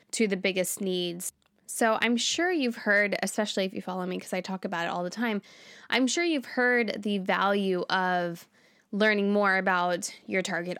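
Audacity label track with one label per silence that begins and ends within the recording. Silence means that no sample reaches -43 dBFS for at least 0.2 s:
1.300000	1.690000	silence
8.430000	8.930000	silence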